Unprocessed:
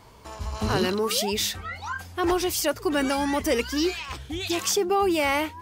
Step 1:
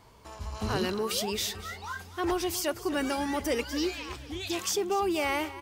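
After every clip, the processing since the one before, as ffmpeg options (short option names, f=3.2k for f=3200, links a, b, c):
-af "aecho=1:1:244|488|732|976|1220:0.158|0.084|0.0445|0.0236|0.0125,volume=-5.5dB"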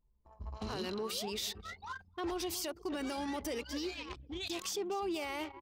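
-af "anlmdn=1,alimiter=level_in=1.5dB:limit=-24dB:level=0:latency=1:release=75,volume=-1.5dB,equalizer=f=100:t=o:w=0.67:g=-6,equalizer=f=1.6k:t=o:w=0.67:g=-3,equalizer=f=4k:t=o:w=0.67:g=4,volume=-4dB"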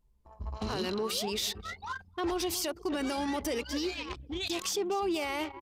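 -af "aresample=32000,aresample=44100,volume=5.5dB"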